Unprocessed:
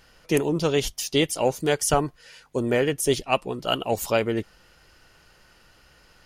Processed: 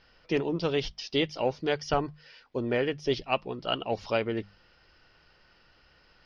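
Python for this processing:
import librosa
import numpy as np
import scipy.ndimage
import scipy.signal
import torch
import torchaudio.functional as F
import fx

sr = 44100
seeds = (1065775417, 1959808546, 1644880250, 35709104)

y = scipy.signal.sosfilt(scipy.signal.ellip(4, 1.0, 40, 5300.0, 'lowpass', fs=sr, output='sos'), x)
y = fx.hum_notches(y, sr, base_hz=50, count=4)
y = y * 10.0 ** (-4.5 / 20.0)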